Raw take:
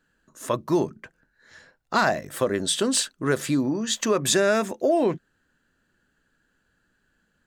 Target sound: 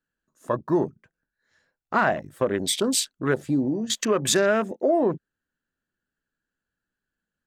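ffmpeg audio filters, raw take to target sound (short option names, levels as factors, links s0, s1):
-af "afwtdn=0.0251"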